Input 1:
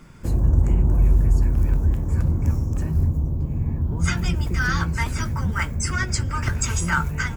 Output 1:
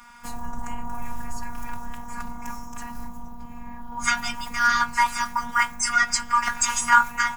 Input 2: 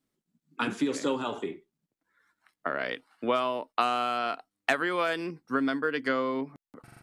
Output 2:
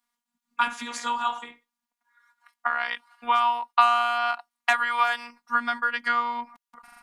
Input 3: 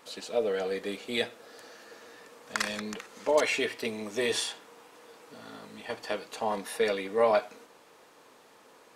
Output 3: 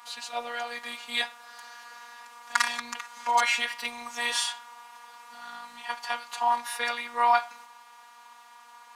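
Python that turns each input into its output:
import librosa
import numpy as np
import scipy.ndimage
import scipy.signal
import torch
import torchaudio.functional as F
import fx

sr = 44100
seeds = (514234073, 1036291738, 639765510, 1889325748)

y = fx.robotise(x, sr, hz=239.0)
y = fx.low_shelf_res(y, sr, hz=640.0, db=-13.5, q=3.0)
y = F.gain(torch.from_numpy(y), 5.5).numpy()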